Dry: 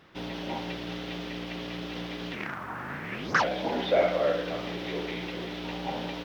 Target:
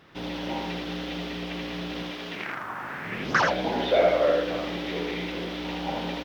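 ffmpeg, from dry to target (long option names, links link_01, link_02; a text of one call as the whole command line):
ffmpeg -i in.wav -filter_complex "[0:a]asettb=1/sr,asplit=3[link_01][link_02][link_03];[link_01]atrim=end=2.034[link_04];[link_02]atrim=start=2.03:end=3.05,asetpts=PTS-STARTPTS,afade=type=in:duration=0.004:curve=qsin,afade=type=out:start_time=1.016:duration=0.004:curve=qsin,lowshelf=frequency=250:gain=-10.5[link_05];[link_03]atrim=start=3.046[link_06];[link_04][link_05]acrossfade=duration=0.004:curve1=hsin:curve2=qsin[link_07];[link_07][link_06]acrossfade=duration=0.004:curve1=qsin:curve2=hsin,aecho=1:1:80:0.668,volume=1.5dB" out.wav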